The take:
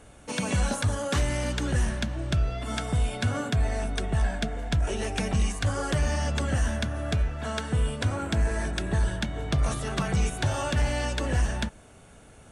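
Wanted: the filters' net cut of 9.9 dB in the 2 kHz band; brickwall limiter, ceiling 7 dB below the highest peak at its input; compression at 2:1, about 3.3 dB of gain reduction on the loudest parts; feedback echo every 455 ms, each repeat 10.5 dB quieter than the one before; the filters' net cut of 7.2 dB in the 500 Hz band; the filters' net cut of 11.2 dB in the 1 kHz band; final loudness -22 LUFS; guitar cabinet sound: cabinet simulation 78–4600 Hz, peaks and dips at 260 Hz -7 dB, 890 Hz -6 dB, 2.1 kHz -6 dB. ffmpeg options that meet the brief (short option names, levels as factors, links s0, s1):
-af "equalizer=f=500:t=o:g=-5,equalizer=f=1000:t=o:g=-8.5,equalizer=f=2000:t=o:g=-7,acompressor=threshold=0.0501:ratio=2,alimiter=level_in=1.12:limit=0.0631:level=0:latency=1,volume=0.891,highpass=78,equalizer=f=260:t=q:w=4:g=-7,equalizer=f=890:t=q:w=4:g=-6,equalizer=f=2100:t=q:w=4:g=-6,lowpass=f=4600:w=0.5412,lowpass=f=4600:w=1.3066,aecho=1:1:455|910|1365:0.299|0.0896|0.0269,volume=5.96"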